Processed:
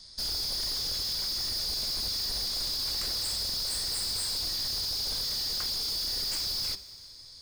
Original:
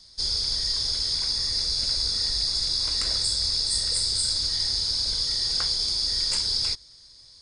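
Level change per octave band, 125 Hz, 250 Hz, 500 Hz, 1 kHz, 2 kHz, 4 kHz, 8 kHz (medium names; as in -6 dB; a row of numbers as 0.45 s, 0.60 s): -6.0 dB, -1.5 dB, -1.5 dB, -1.5 dB, -3.0 dB, -6.0 dB, -5.0 dB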